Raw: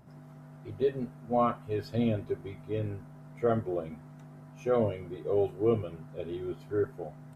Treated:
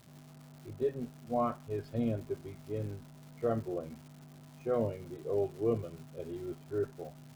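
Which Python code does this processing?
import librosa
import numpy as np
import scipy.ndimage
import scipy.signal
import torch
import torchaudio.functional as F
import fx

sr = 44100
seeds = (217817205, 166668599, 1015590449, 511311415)

y = fx.high_shelf(x, sr, hz=2600.0, db=-11.5)
y = fx.dmg_crackle(y, sr, seeds[0], per_s=380.0, level_db=-43.0)
y = F.gain(torch.from_numpy(y), -4.0).numpy()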